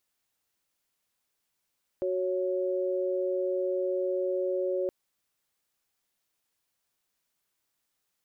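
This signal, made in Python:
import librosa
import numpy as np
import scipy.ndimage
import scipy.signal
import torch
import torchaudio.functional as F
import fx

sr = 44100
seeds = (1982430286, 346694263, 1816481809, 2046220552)

y = fx.chord(sr, length_s=2.87, notes=(66, 73), wave='sine', level_db=-29.0)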